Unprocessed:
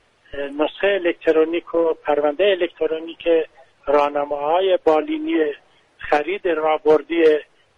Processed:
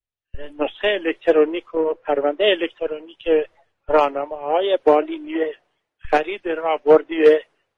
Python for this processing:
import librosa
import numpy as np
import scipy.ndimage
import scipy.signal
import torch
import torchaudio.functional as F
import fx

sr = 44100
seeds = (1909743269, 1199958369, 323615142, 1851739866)

y = fx.vibrato(x, sr, rate_hz=2.6, depth_cents=84.0)
y = fx.band_widen(y, sr, depth_pct=100)
y = F.gain(torch.from_numpy(y), -1.5).numpy()